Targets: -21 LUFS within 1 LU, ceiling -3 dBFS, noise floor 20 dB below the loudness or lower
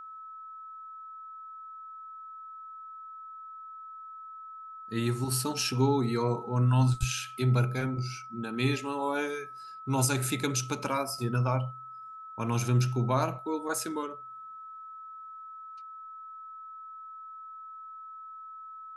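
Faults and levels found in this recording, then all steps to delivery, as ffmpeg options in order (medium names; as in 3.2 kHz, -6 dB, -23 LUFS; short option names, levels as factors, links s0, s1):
steady tone 1.3 kHz; tone level -42 dBFS; loudness -29.5 LUFS; peak level -13.5 dBFS; loudness target -21.0 LUFS
-> -af "bandreject=f=1300:w=30"
-af "volume=2.66"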